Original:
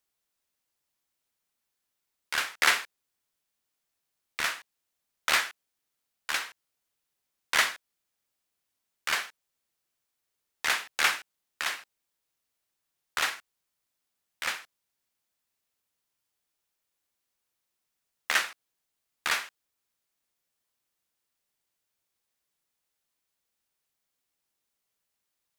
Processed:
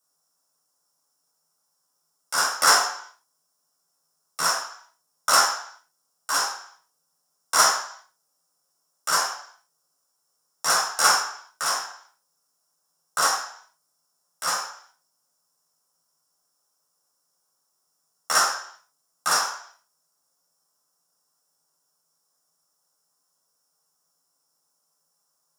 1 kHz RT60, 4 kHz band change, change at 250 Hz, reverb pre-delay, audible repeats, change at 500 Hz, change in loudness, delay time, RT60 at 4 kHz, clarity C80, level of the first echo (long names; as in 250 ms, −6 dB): 0.60 s, +6.5 dB, +5.5 dB, 3 ms, no echo audible, +10.5 dB, +6.5 dB, no echo audible, 0.60 s, 7.5 dB, no echo audible